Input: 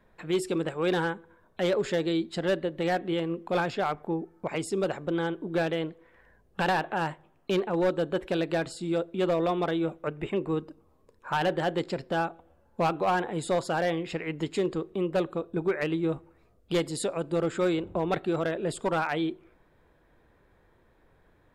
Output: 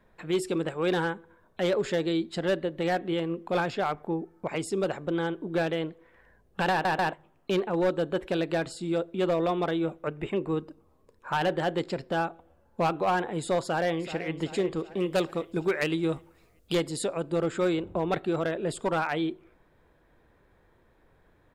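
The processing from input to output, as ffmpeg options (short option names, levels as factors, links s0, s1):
-filter_complex "[0:a]asplit=2[s0][s1];[s1]afade=t=in:st=13.61:d=0.01,afade=t=out:st=14.33:d=0.01,aecho=0:1:380|760|1140|1520|1900|2280:0.223872|0.12313|0.0677213|0.0372467|0.0204857|0.0112671[s2];[s0][s2]amix=inputs=2:normalize=0,asettb=1/sr,asplit=3[s3][s4][s5];[s3]atrim=end=15.004[s6];[s4]atrim=start=15:end=16.75,asetpts=PTS-STARTPTS,afade=t=in:d=0.004:c=qsin,afade=t=out:st=1.746:d=0.004:c=qsin,highshelf=f=3000:g=12[s7];[s5]atrim=start=16.746[s8];[s6][s7]acrossfade=d=0.004:c1=hsin:c2=qsin[s9];[s9][s8]acrossfade=d=0.004:c1=qsin:c2=hsin,asplit=4[s10][s11][s12][s13];[s10]atrim=end=6.852[s14];[s11]atrim=start=6.708:end=6.852[s15];[s12]atrim=start=6.708:end=6.852[s16];[s13]atrim=start=7.128[s17];[s14][s15]acrossfade=d=0.004:c1=hsin:c2=hsin[s18];[s18][s16]acrossfade=d=0.004:c1=hsin:c2=hsin[s19];[s19][s17]acrossfade=d=0.004:c1=hsin:c2=hsin"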